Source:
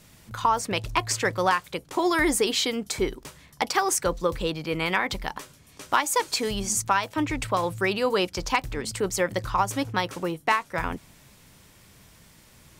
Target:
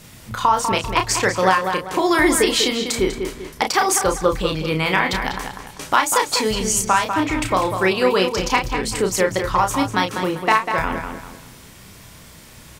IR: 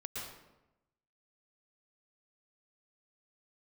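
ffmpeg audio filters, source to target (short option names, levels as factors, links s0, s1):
-filter_complex "[0:a]asplit=2[s0][s1];[s1]adelay=32,volume=0.531[s2];[s0][s2]amix=inputs=2:normalize=0,asplit=2[s3][s4];[s4]adelay=196,lowpass=f=4400:p=1,volume=0.422,asplit=2[s5][s6];[s6]adelay=196,lowpass=f=4400:p=1,volume=0.3,asplit=2[s7][s8];[s8]adelay=196,lowpass=f=4400:p=1,volume=0.3,asplit=2[s9][s10];[s10]adelay=196,lowpass=f=4400:p=1,volume=0.3[s11];[s3][s5][s7][s9][s11]amix=inputs=5:normalize=0,asplit=2[s12][s13];[s13]acompressor=threshold=0.0141:ratio=6,volume=0.794[s14];[s12][s14]amix=inputs=2:normalize=0,volume=1.58"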